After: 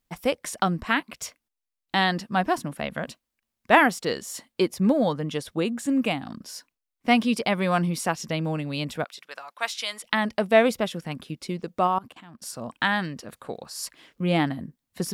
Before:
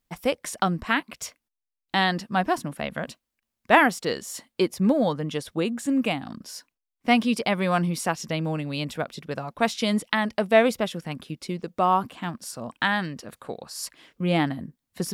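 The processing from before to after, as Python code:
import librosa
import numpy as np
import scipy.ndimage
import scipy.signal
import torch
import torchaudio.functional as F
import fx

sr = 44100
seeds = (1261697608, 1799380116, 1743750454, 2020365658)

y = fx.highpass(x, sr, hz=1100.0, slope=12, at=(9.04, 10.04))
y = fx.level_steps(y, sr, step_db=23, at=(11.87, 12.42))
y = fx.dmg_crackle(y, sr, seeds[0], per_s=fx.line((13.53, 200.0), (14.22, 65.0)), level_db=-58.0, at=(13.53, 14.22), fade=0.02)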